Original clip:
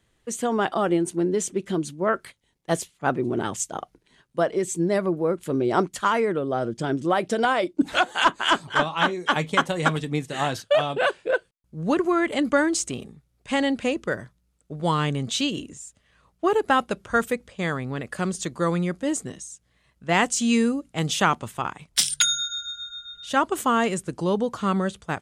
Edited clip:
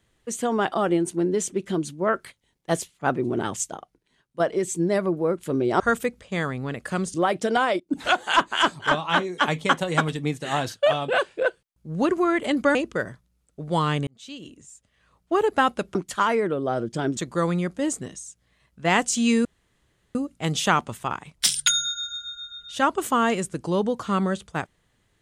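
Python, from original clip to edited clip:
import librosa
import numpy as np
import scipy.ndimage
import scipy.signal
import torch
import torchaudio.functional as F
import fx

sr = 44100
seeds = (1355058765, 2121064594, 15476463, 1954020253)

y = fx.edit(x, sr, fx.clip_gain(start_s=3.75, length_s=0.65, db=-8.0),
    fx.swap(start_s=5.8, length_s=1.22, other_s=17.07, other_length_s=1.34),
    fx.fade_in_from(start_s=7.68, length_s=0.26, floor_db=-15.5),
    fx.cut(start_s=12.63, length_s=1.24),
    fx.fade_in_span(start_s=15.19, length_s=1.33),
    fx.insert_room_tone(at_s=20.69, length_s=0.7), tone=tone)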